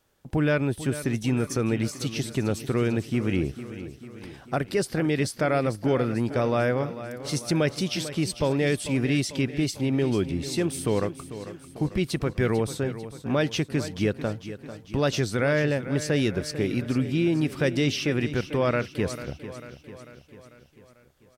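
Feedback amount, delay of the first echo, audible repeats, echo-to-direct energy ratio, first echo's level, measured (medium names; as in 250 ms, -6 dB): 56%, 445 ms, 5, -11.5 dB, -13.0 dB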